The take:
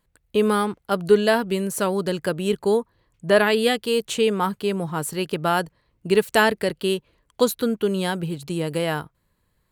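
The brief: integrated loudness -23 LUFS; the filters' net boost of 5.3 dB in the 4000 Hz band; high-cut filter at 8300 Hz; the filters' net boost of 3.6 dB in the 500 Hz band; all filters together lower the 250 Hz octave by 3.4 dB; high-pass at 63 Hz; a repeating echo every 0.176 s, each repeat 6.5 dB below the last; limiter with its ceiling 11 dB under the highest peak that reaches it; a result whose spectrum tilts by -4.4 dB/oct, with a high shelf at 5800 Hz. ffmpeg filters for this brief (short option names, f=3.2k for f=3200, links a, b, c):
-af "highpass=63,lowpass=8.3k,equalizer=f=250:t=o:g=-7,equalizer=f=500:t=o:g=6.5,equalizer=f=4k:t=o:g=8.5,highshelf=f=5.8k:g=-4,alimiter=limit=-12.5dB:level=0:latency=1,aecho=1:1:176|352|528|704|880|1056:0.473|0.222|0.105|0.0491|0.0231|0.0109"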